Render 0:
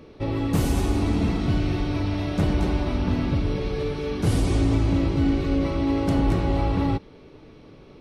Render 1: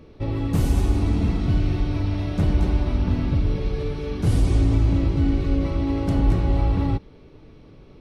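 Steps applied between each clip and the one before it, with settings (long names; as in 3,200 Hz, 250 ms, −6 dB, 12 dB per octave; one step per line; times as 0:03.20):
low-shelf EQ 130 Hz +10 dB
level −3.5 dB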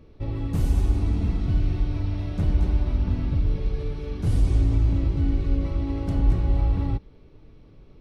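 low-shelf EQ 87 Hz +9 dB
level −7 dB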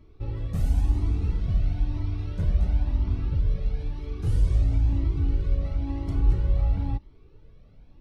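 flanger whose copies keep moving one way rising 0.99 Hz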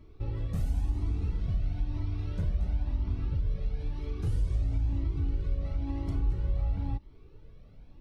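downward compressor 2 to 1, threshold −30 dBFS, peak gain reduction 9 dB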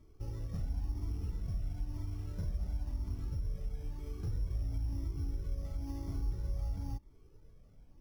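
bad sample-rate conversion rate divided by 8×, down filtered, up hold
level −7 dB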